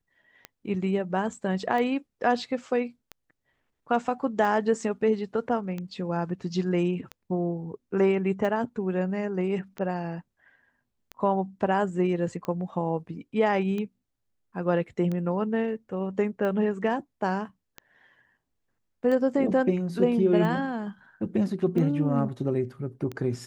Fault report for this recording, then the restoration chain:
tick 45 rpm -21 dBFS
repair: de-click

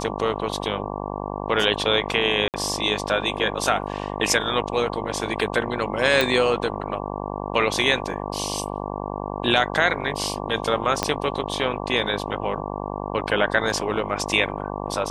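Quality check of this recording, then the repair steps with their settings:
buzz 50 Hz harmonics 23 -30 dBFS
2.48–2.54 gap 58 ms
6.21 pop
11.03 pop -5 dBFS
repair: de-click; de-hum 50 Hz, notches 23; interpolate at 2.48, 58 ms

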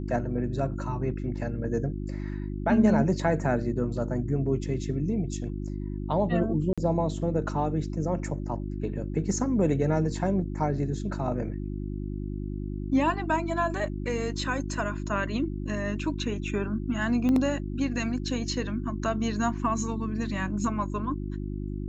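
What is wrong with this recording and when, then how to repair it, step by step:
hum 50 Hz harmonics 7 -33 dBFS
6.73–6.78 gap 46 ms
17.29 pop -17 dBFS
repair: de-click; de-hum 50 Hz, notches 7; interpolate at 6.73, 46 ms

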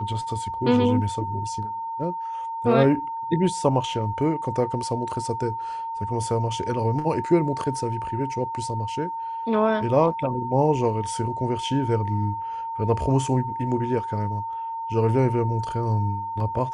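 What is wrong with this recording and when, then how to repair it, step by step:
tone 910 Hz -28 dBFS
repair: notch 910 Hz, Q 30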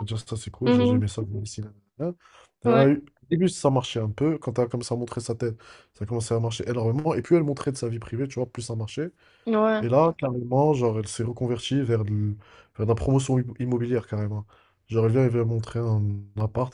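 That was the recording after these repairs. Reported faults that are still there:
none

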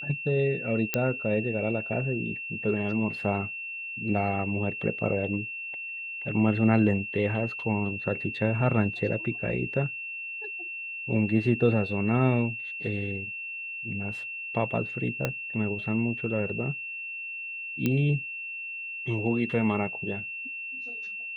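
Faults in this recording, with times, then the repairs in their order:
tone 2700 Hz -34 dBFS
0.94 pop -9 dBFS
15.25 pop -12 dBFS
17.86 pop -13 dBFS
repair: de-click; notch 2700 Hz, Q 30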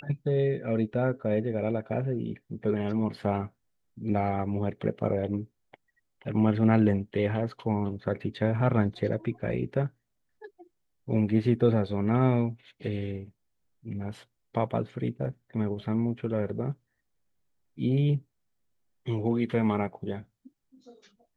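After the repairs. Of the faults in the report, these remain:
15.25 pop

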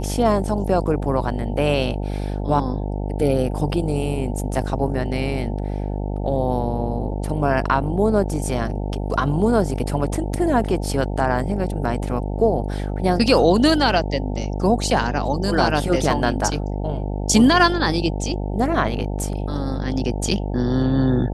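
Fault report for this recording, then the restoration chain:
buzz 50 Hz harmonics 18 -25 dBFS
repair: de-hum 50 Hz, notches 18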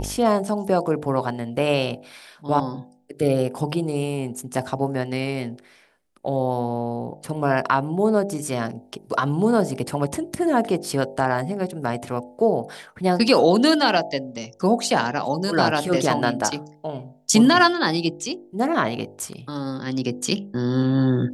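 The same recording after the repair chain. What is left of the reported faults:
none

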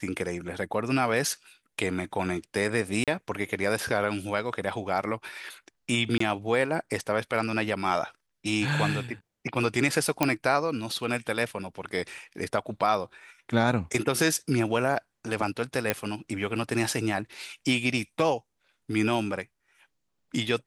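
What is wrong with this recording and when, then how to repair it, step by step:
3.04–3.08 gap 37 ms
6.18–6.2 gap 24 ms
10.23 pop -7 dBFS
15.9 pop -8 dBFS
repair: de-click; interpolate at 3.04, 37 ms; interpolate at 6.18, 24 ms

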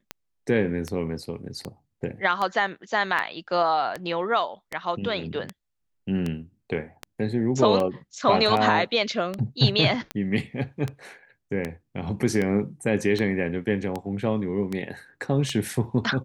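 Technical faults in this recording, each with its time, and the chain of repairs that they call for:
tick 78 rpm -15 dBFS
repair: de-click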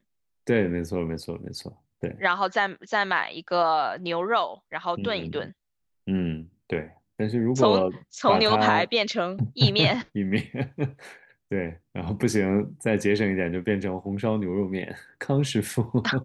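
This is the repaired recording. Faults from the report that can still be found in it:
none

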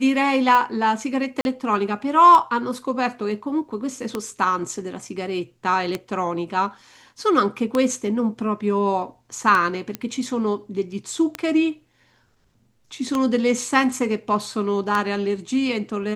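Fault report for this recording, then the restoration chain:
tick 33 1/3 rpm -9 dBFS
1.41–1.45 gap 41 ms
9.95 pop -12 dBFS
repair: de-click; interpolate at 1.41, 41 ms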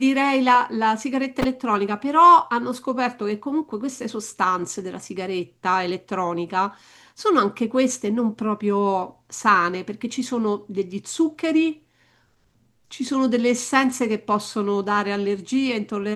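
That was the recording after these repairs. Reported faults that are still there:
none

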